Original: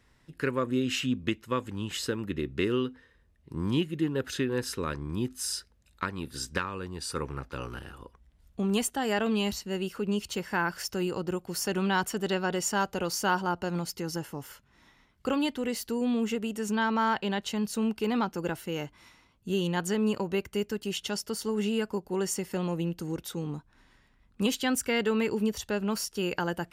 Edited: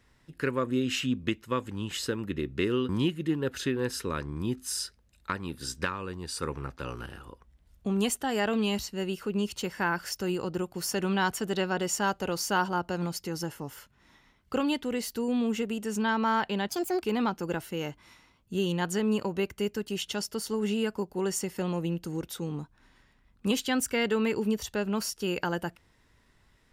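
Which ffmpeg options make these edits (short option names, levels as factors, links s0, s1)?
-filter_complex "[0:a]asplit=4[s0][s1][s2][s3];[s0]atrim=end=2.892[s4];[s1]atrim=start=3.618:end=17.424[s5];[s2]atrim=start=17.42:end=17.98,asetpts=PTS-STARTPTS,asetrate=72765,aresample=44100,atrim=end_sample=14967,asetpts=PTS-STARTPTS[s6];[s3]atrim=start=17.976[s7];[s4][s5]acrossfade=d=0.004:c1=hsin:c2=hsin[s8];[s8][s6]acrossfade=d=0.004:c1=hsin:c2=hsin[s9];[s9][s7]acrossfade=d=0.004:c1=hsin:c2=hsin"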